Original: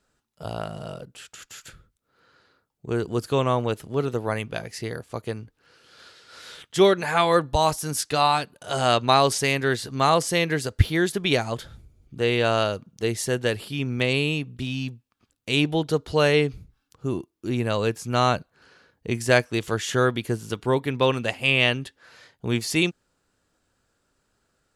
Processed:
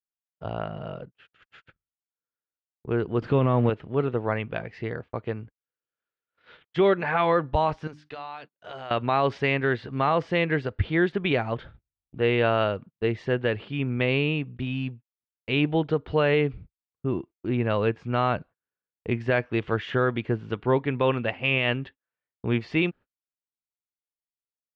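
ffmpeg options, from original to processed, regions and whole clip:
-filter_complex "[0:a]asettb=1/sr,asplit=3[s0][s1][s2];[s0]atrim=end=3.224[s3];[s1]atrim=start=3.22:end=3.7,asetpts=PTS-STARTPTS,afade=t=in:d=0.004:c=qsin,afade=t=out:st=0.476:d=0.004:c=qsin,aeval=exprs='val(0)+0.5*0.0188*sgn(val(0))':c=same,equalizer=f=180:w=0.62:g=8.5[s4];[s2]atrim=start=3.696[s5];[s3][s4]acrossfade=d=0.004:c1=hsin:c2=qsin[s6];[s6][s5]acrossfade=d=0.004:c1=qsin:c2=hsin,asettb=1/sr,asplit=3[s7][s8][s9];[s7]atrim=end=7.874[s10];[s8]atrim=start=7.87:end=8.91,asetpts=PTS-STARTPTS,afade=t=in:d=0.004:c=qsin,afade=t=out:st=1.036:d=0.004:c=qsin,bass=f=250:g=-6,treble=f=4000:g=10,acompressor=threshold=0.02:ratio=5:attack=3.2:release=140:knee=1:detection=peak,bandreject=f=50:t=h:w=6,bandreject=f=100:t=h:w=6,bandreject=f=150:t=h:w=6,bandreject=f=200:t=h:w=6,bandreject=f=250:t=h:w=6,bandreject=f=300:t=h:w=6[s11];[s9]atrim=start=8.906[s12];[s10][s11]acrossfade=d=0.004:c1=hsin:c2=qsin[s13];[s13][s12]acrossfade=d=0.004:c1=qsin:c2=hsin,agate=range=0.00891:threshold=0.00891:ratio=16:detection=peak,lowpass=f=2800:w=0.5412,lowpass=f=2800:w=1.3066,alimiter=limit=0.237:level=0:latency=1:release=74"

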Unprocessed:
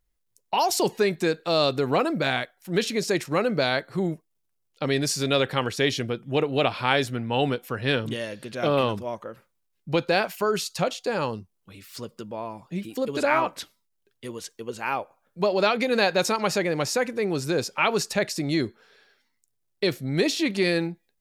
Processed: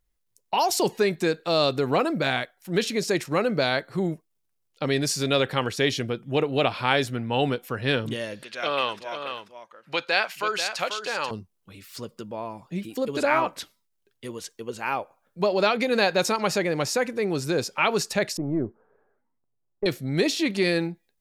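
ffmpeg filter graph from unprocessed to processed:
-filter_complex "[0:a]asettb=1/sr,asplit=3[s0][s1][s2];[s0]atrim=end=8.434[s3];[s1]atrim=start=8.43:end=11.31,asetpts=PTS-STARTPTS,afade=t=in:d=0.004:c=qsin,afade=t=out:st=2.876:d=0.004:c=qsin,bandpass=f=1700:t=q:w=0.64,highshelf=f=2300:g=9.5,aecho=1:1:488:0.376,atrim=end_sample=127008[s4];[s2]atrim=start=11.306[s5];[s3][s4]acrossfade=d=0.004:c1=hsin:c2=qsin[s6];[s6][s5]acrossfade=d=0.004:c1=qsin:c2=hsin,asettb=1/sr,asplit=3[s7][s8][s9];[s7]atrim=end=18.374[s10];[s8]atrim=start=18.37:end=19.86,asetpts=PTS-STARTPTS,afade=t=in:d=0.004:c=qsin,afade=t=out:st=1.486:d=0.004:c=qsin,aeval=exprs='if(lt(val(0),0),0.708*val(0),val(0))':c=same,lowpass=f=1100:w=0.5412,lowpass=f=1100:w=1.3066[s11];[s9]atrim=start=19.856[s12];[s10][s11]acrossfade=d=0.004:c1=hsin:c2=qsin[s13];[s13][s12]acrossfade=d=0.004:c1=qsin:c2=hsin"

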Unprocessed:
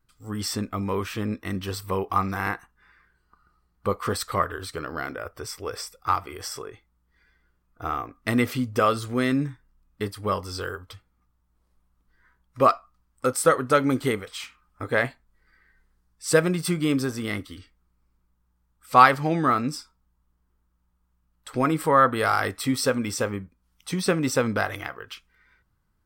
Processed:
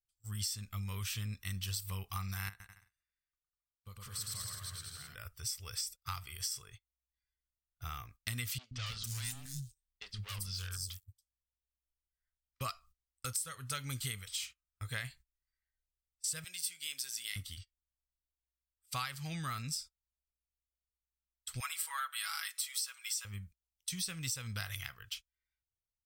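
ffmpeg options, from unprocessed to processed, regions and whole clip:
-filter_complex "[0:a]asettb=1/sr,asplit=3[s0][s1][s2];[s0]atrim=end=2.494[s3];[s1]atrim=start=2.49:end=5.15,asetpts=PTS-STARTPTS,afade=t=in:d=0.004:c=qsin,afade=t=out:st=2.656:d=0.004:c=qsin,agate=range=0.0224:threshold=0.00178:ratio=3:release=100:detection=peak,acompressor=threshold=0.00126:ratio=1.5:attack=3.2:release=140:knee=1:detection=peak,aecho=1:1:110|198|268.4|324.7|369.8:0.794|0.631|0.501|0.398|0.316,atrim=end_sample=117306[s4];[s2]atrim=start=5.146[s5];[s3][s4]acrossfade=d=0.004:c1=hsin:c2=qsin[s6];[s6][s5]acrossfade=d=0.004:c1=qsin:c2=hsin,asettb=1/sr,asplit=3[s7][s8][s9];[s7]atrim=end=8.584[s10];[s8]atrim=start=8.58:end=12.61,asetpts=PTS-STARTPTS,afade=t=in:d=0.004:c=qsin,afade=t=out:st=4.026:d=0.004:c=qsin,volume=26.6,asoftclip=hard,volume=0.0376,acrossover=split=340|5300[s11][s12][s13];[s11]adelay=130[s14];[s13]adelay=280[s15];[s14][s12][s15]amix=inputs=3:normalize=0,atrim=end_sample=177723[s16];[s9]atrim=start=12.606[s17];[s10][s16]acrossfade=d=0.004:c1=hsin:c2=qsin[s18];[s18][s17]acrossfade=d=0.004:c1=qsin:c2=hsin,asettb=1/sr,asplit=3[s19][s20][s21];[s19]atrim=end=16.444[s22];[s20]atrim=start=16.44:end=17.36,asetpts=PTS-STARTPTS,afade=t=in:d=0.004:c=qsin,afade=t=out:st=0.916:d=0.004:c=qsin,highpass=840,equalizer=f=1200:w=2.5:g=-12[s23];[s21]atrim=start=17.356[s24];[s22][s23]acrossfade=d=0.004:c1=hsin:c2=qsin[s25];[s25][s24]acrossfade=d=0.004:c1=qsin:c2=hsin,asettb=1/sr,asplit=3[s26][s27][s28];[s26]atrim=end=21.604[s29];[s27]atrim=start=21.6:end=23.25,asetpts=PTS-STARTPTS,afade=t=in:d=0.004:c=qsin,afade=t=out:st=1.646:d=0.004:c=qsin,highpass=f=970:w=0.5412,highpass=f=970:w=1.3066,aecho=1:1:6.1:0.76,atrim=end_sample=72765[s30];[s28]atrim=start=23.246[s31];[s29][s30]acrossfade=d=0.004:c1=hsin:c2=qsin[s32];[s32][s31]acrossfade=d=0.004:c1=qsin:c2=hsin,agate=range=0.0631:threshold=0.00708:ratio=16:detection=peak,firequalizer=gain_entry='entry(110,0);entry(290,-26);entry(1400,-11);entry(2900,2);entry(6900,8)':delay=0.05:min_phase=1,acompressor=threshold=0.0282:ratio=10,volume=0.668"

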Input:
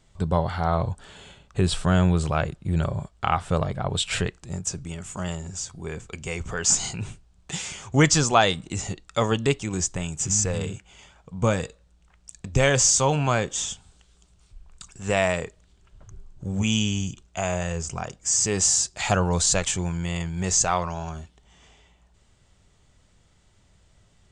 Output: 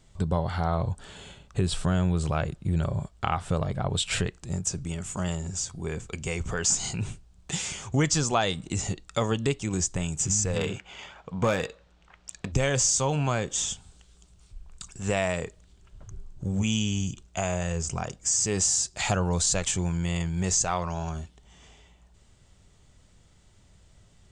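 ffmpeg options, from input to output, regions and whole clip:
-filter_complex "[0:a]asettb=1/sr,asplit=3[s0][s1][s2];[s0]atrim=end=10.564[s3];[s1]atrim=start=10.56:end=12.52,asetpts=PTS-STARTPTS,afade=t=in:d=0.004:c=qsin,afade=t=out:st=1.956:d=0.004:c=qsin,adynamicsmooth=sensitivity=2.5:basefreq=4100,asplit=2[s4][s5];[s5]highpass=f=720:p=1,volume=6.31,asoftclip=type=tanh:threshold=0.447[s6];[s4][s6]amix=inputs=2:normalize=0,lowpass=f=7700:p=1,volume=0.501[s7];[s2]atrim=start=12.516[s8];[s3][s7]acrossfade=d=0.004:c1=hsin:c2=qsin[s9];[s9][s8]acrossfade=d=0.004:c1=qsin:c2=hsin,equalizer=f=1400:w=0.36:g=-3,acompressor=threshold=0.0398:ratio=2,volume=1.33"

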